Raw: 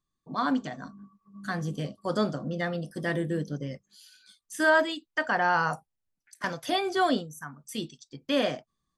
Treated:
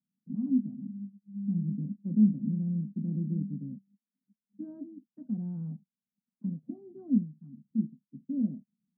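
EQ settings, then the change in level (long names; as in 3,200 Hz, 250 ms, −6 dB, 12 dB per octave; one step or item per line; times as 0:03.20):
flat-topped band-pass 210 Hz, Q 3.1
high-frequency loss of the air 370 metres
spectral tilt −4 dB per octave
0.0 dB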